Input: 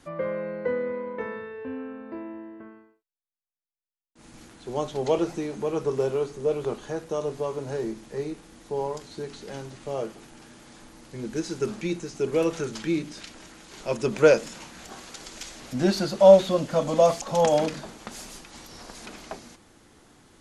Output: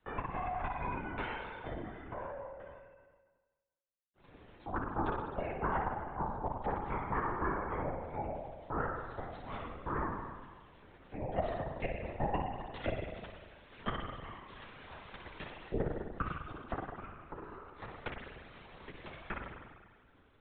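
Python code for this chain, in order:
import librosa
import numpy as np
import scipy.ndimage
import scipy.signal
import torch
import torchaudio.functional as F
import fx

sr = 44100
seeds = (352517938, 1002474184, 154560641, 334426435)

y = fx.spec_gate(x, sr, threshold_db=-25, keep='strong')
y = fx.dynamic_eq(y, sr, hz=440.0, q=3.2, threshold_db=-38.0, ratio=4.0, max_db=-5)
y = fx.cheby_harmonics(y, sr, harmonics=(3, 4, 8), levels_db=(-9, -13, -9), full_scale_db=-4.0)
y = fx.gate_flip(y, sr, shuts_db=-16.0, range_db=-38)
y = fx.room_early_taps(y, sr, ms=(11, 26), db=(-9.0, -16.5))
y = fx.rev_spring(y, sr, rt60_s=1.2, pass_ms=(49,), chirp_ms=20, drr_db=0.5)
y = fx.lpc_vocoder(y, sr, seeds[0], excitation='whisper', order=16)
y = fx.band_squash(y, sr, depth_pct=40)
y = y * 10.0 ** (-2.5 / 20.0)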